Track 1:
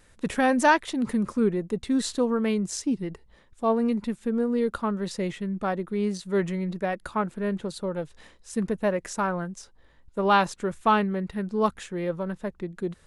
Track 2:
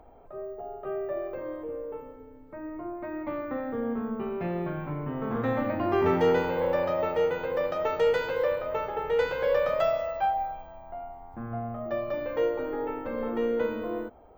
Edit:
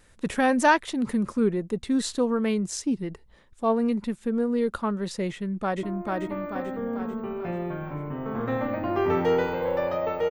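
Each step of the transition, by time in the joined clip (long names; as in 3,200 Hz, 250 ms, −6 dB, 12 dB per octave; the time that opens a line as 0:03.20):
track 1
0:05.32–0:05.83: delay throw 440 ms, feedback 55%, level −2 dB
0:05.83: continue with track 2 from 0:02.79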